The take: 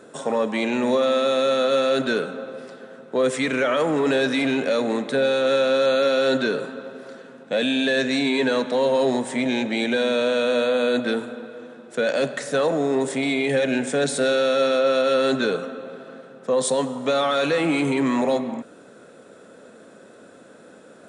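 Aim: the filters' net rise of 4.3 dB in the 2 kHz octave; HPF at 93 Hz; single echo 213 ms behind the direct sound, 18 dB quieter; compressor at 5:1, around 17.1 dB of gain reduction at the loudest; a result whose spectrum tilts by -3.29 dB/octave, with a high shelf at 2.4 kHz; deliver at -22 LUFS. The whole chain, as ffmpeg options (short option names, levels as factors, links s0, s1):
-af "highpass=93,equalizer=f=2000:t=o:g=4,highshelf=f=2400:g=3.5,acompressor=threshold=0.0158:ratio=5,aecho=1:1:213:0.126,volume=5.62"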